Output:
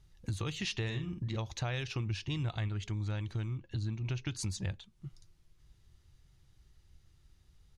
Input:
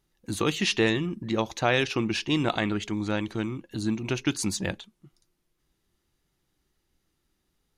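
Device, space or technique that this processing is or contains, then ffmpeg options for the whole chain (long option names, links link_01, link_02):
jukebox: -filter_complex "[0:a]aemphasis=mode=production:type=50fm,asplit=3[link_01][link_02][link_03];[link_01]afade=type=out:start_time=0.88:duration=0.02[link_04];[link_02]asplit=2[link_05][link_06];[link_06]adelay=50,volume=-7.5dB[link_07];[link_05][link_07]amix=inputs=2:normalize=0,afade=type=in:start_time=0.88:duration=0.02,afade=type=out:start_time=1.36:duration=0.02[link_08];[link_03]afade=type=in:start_time=1.36:duration=0.02[link_09];[link_04][link_08][link_09]amix=inputs=3:normalize=0,asettb=1/sr,asplit=3[link_10][link_11][link_12];[link_10]atrim=end=2.064[link_13];[link_11]atrim=start=2.06:end=2.68,asetpts=PTS-STARTPTS,afade=type=in:duration=0.004:curve=qsin,afade=type=out:start_time=0.616:duration=0.004:curve=qsin,equalizer=frequency=100:width=1.6:gain=5.5[link_14];[link_12]atrim=start=2.676[link_15];[link_13][link_14]acrossfade=duration=0.004:curve1=hsin:curve2=qsin[link_16];[link_16][link_15]acrossfade=duration=0.004:curve1=qsin:curve2=hsin,asettb=1/sr,asplit=3[link_17][link_18][link_19];[link_17]atrim=end=3.554[link_20];[link_18]atrim=start=3.55:end=4.35,asetpts=PTS-STARTPTS,afade=type=in:duration=0.004:curve=qsin,afade=type=out:start_time=0.796:duration=0.004:curve=qsin,lowpass=5900[link_21];[link_19]atrim=start=4.346[link_22];[link_20][link_21]acrossfade=duration=0.004:curve1=hsin:curve2=qsin[link_23];[link_23][link_22]acrossfade=duration=0.004:curve1=qsin:curve2=hsin,lowpass=5400,lowshelf=frequency=160:width_type=q:width=1.5:gain=13.5,acompressor=threshold=-38dB:ratio=4,volume=1.5dB"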